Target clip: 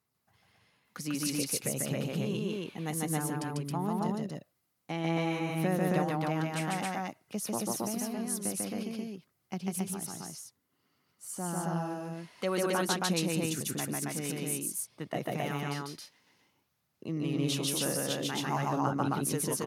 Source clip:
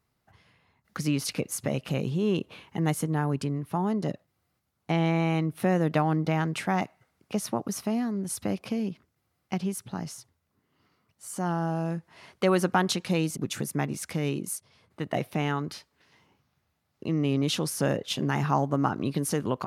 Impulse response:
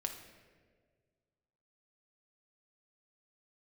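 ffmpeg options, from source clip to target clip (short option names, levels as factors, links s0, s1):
-filter_complex "[0:a]highpass=110,aemphasis=mode=production:type=cd,aphaser=in_gain=1:out_gain=1:delay=4.1:decay=0.27:speed=0.53:type=sinusoidal,asplit=2[s0][s1];[s1]aecho=0:1:145.8|271.1:0.891|0.891[s2];[s0][s2]amix=inputs=2:normalize=0,volume=0.355"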